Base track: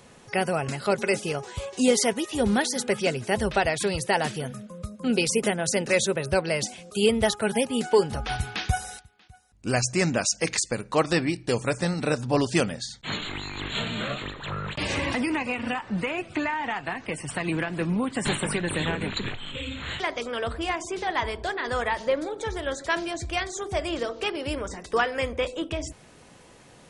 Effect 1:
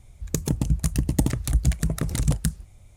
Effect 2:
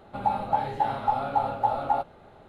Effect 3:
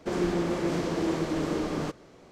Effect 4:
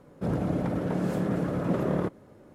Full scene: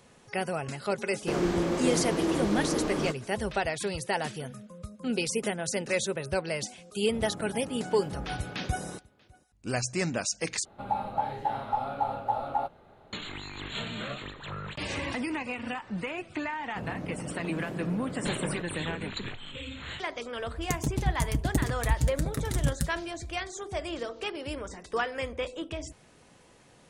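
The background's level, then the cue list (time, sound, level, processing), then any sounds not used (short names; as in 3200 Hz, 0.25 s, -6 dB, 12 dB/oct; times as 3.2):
base track -6 dB
1.21 add 3
6.9 add 4 -13.5 dB
10.65 replace with 2 -4.5 dB
16.54 add 4 -9.5 dB
20.36 add 1 -4.5 dB + notch comb 180 Hz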